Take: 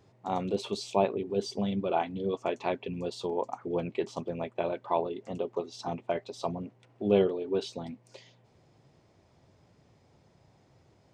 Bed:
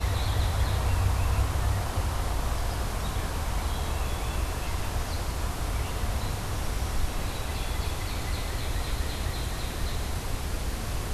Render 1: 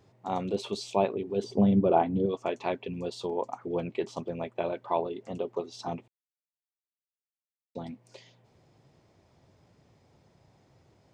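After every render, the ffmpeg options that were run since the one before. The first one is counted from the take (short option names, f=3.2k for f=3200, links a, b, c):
-filter_complex "[0:a]asettb=1/sr,asplit=3[a][b][c];[a]atrim=end=1.444[d];[b]atrim=start=1.44:end=2.26,asetpts=PTS-STARTPTS,afade=t=in:d=0.004:c=qsin,afade=t=out:st=0.816:d=0.004:c=qsin,tiltshelf=f=1.4k:g=9[e];[c]atrim=start=2.256[f];[d][e]acrossfade=d=0.004:c1=hsin:c2=qsin[g];[g][f]acrossfade=d=0.004:c1=qsin:c2=hsin,asplit=3[h][i][j];[h]atrim=end=6.08,asetpts=PTS-STARTPTS,afade=t=out:st=6.076:d=0.004:c=hsin[k];[i]atrim=start=6.08:end=7.75,asetpts=PTS-STARTPTS,volume=0[l];[j]atrim=start=7.75,asetpts=PTS-STARTPTS,afade=t=in:d=0.004:c=hsin[m];[k][l][m]concat=n=3:v=0:a=1"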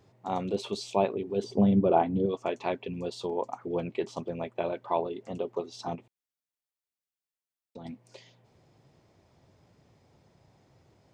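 -filter_complex "[0:a]asettb=1/sr,asplit=3[a][b][c];[a]atrim=end=5.954[d];[b]atrim=start=5.95:end=7.85,asetpts=PTS-STARTPTS,afade=t=in:d=0.004:c=qsin,afade=t=out:st=1.896:d=0.004:c=qsin,acompressor=threshold=-41dB:ratio=3:attack=3.2:release=140:knee=1:detection=peak[e];[c]atrim=start=7.846[f];[d][e]acrossfade=d=0.004:c1=hsin:c2=qsin[g];[g][f]acrossfade=d=0.004:c1=qsin:c2=hsin"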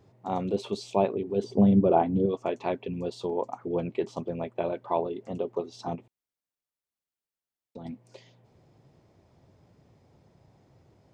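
-af "tiltshelf=f=970:g=3"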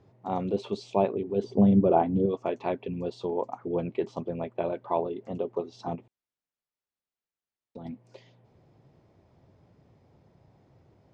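-af "lowpass=7k,highshelf=f=3.8k:g=-6"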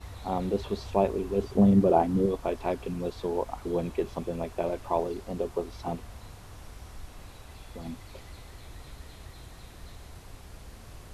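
-filter_complex "[1:a]volume=-15.5dB[a];[0:a][a]amix=inputs=2:normalize=0"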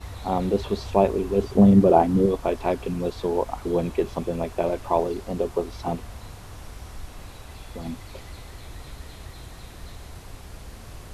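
-af "volume=5.5dB"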